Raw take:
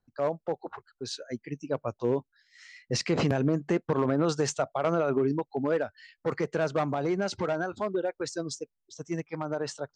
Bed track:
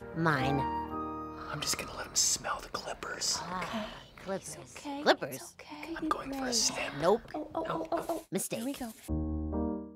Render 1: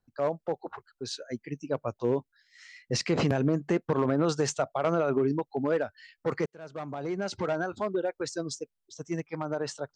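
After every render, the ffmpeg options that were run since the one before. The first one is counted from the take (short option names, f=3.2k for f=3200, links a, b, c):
-filter_complex "[0:a]asplit=2[a][b];[a]atrim=end=6.46,asetpts=PTS-STARTPTS,afade=t=out:st=6.456:d=0.004:c=hsin[c];[b]atrim=start=6.46,asetpts=PTS-STARTPTS,afade=t=in:d=1.07[d];[c][d]concat=n=2:v=0:a=1"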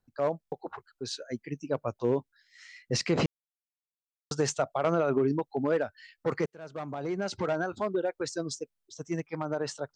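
-filter_complex "[0:a]asplit=8[a][b][c][d][e][f][g][h];[a]atrim=end=0.442[i];[b]atrim=start=0.418:end=0.442[j];[c]atrim=start=0.418:end=0.442[k];[d]atrim=start=0.418:end=0.442[l];[e]atrim=start=0.418:end=0.442[m];[f]atrim=start=0.518:end=3.26,asetpts=PTS-STARTPTS,afade=t=out:st=2.738:d=0.004:c=hsin[n];[g]atrim=start=3.26:end=4.31,asetpts=PTS-STARTPTS,volume=0[o];[h]atrim=start=4.31,asetpts=PTS-STARTPTS,afade=t=in:d=0.004:c=hsin[p];[i][j]acrossfade=d=0.004:c1=hsin:c2=hsin[q];[q][k]acrossfade=d=0.004:c1=hsin:c2=hsin[r];[r][l]acrossfade=d=0.004:c1=hsin:c2=hsin[s];[s][m]acrossfade=d=0.004:c1=hsin:c2=hsin[t];[n][o][p]concat=n=3:v=0:a=1[u];[t][u]acrossfade=d=0.004:c1=hsin:c2=hsin"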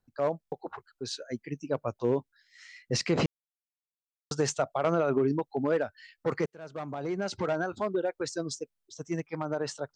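-af anull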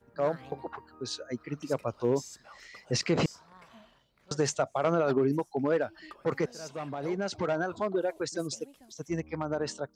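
-filter_complex "[1:a]volume=-18dB[a];[0:a][a]amix=inputs=2:normalize=0"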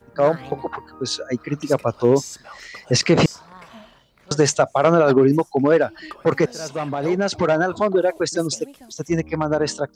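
-af "volume=11.5dB"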